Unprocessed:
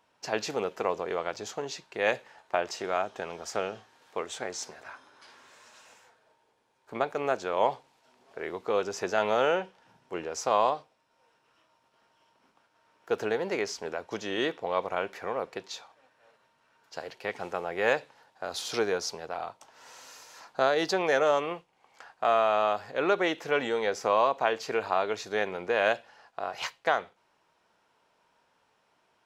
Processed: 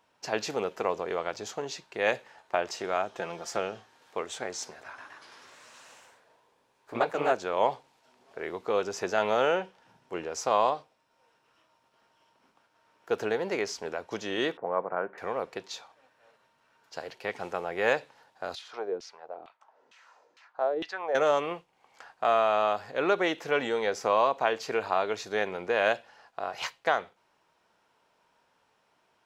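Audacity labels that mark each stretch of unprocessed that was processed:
3.140000	3.580000	comb filter 5.8 ms, depth 57%
4.860000	7.350000	delay with pitch and tempo change per echo 119 ms, each echo +1 semitone, echoes 2
14.570000	15.180000	Chebyshev band-pass filter 140–1,600 Hz, order 3
18.550000	21.150000	auto-filter band-pass saw down 2.2 Hz 260–3,100 Hz

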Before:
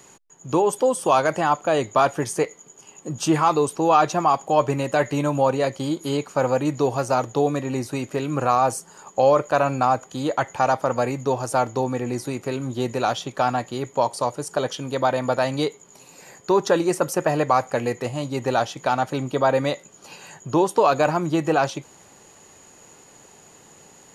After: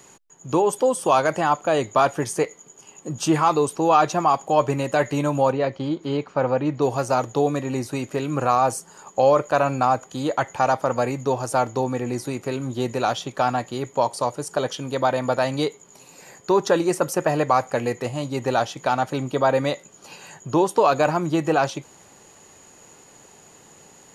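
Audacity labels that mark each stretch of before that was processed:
5.520000	6.820000	high-frequency loss of the air 190 metres

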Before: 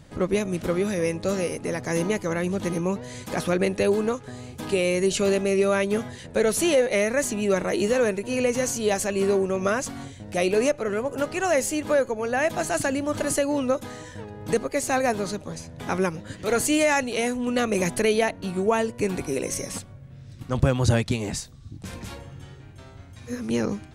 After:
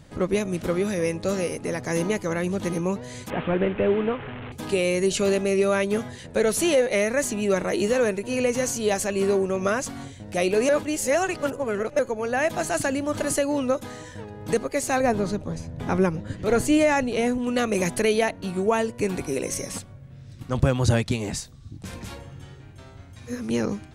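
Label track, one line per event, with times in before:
3.300000	4.520000	linear delta modulator 16 kbit/s, step −30 dBFS
10.690000	11.990000	reverse
15.000000	17.380000	spectral tilt −2 dB per octave

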